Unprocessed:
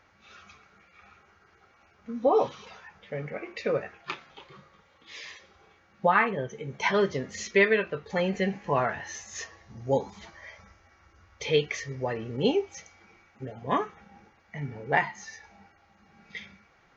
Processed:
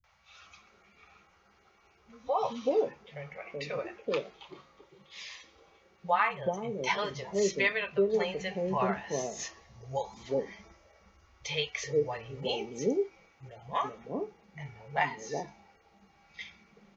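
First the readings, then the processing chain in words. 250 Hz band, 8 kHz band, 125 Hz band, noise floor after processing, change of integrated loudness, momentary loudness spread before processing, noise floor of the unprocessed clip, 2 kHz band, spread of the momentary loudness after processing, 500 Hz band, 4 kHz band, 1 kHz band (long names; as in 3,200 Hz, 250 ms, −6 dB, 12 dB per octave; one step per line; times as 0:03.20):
−4.5 dB, can't be measured, −6.0 dB, −65 dBFS, −4.0 dB, 19 LU, −62 dBFS, −5.0 dB, 19 LU, −3.0 dB, −0.5 dB, −3.0 dB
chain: graphic EQ with 15 bands 100 Hz −8 dB, 250 Hz −4 dB, 1,600 Hz −8 dB
three-band delay without the direct sound lows, highs, mids 40/420 ms, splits 150/590 Hz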